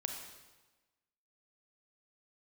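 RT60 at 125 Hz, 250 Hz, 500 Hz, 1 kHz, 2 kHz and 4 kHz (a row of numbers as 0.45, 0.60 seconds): 1.2, 1.2, 1.2, 1.2, 1.1, 1.1 seconds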